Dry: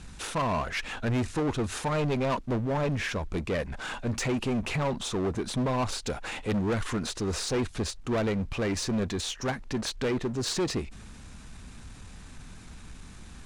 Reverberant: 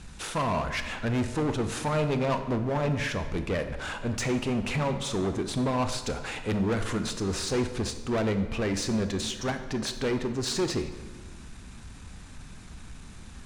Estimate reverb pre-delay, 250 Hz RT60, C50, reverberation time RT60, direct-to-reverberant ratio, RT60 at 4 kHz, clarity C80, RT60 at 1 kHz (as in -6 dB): 21 ms, 1.6 s, 9.5 dB, 1.4 s, 8.0 dB, 0.95 s, 11.5 dB, 1.3 s